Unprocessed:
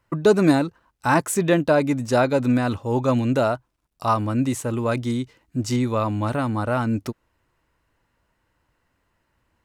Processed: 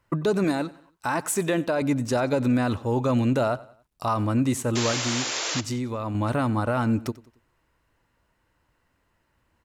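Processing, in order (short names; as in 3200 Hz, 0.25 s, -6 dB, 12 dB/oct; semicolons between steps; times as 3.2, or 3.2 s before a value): 0.44–1.82 low shelf 230 Hz -8.5 dB; limiter -15 dBFS, peak gain reduction 8.5 dB; 4.91–6.15 compressor 3:1, threshold -28 dBFS, peak gain reduction 7.5 dB; 4.75–5.61 painted sound noise 280–7500 Hz -29 dBFS; feedback echo 92 ms, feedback 41%, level -20 dB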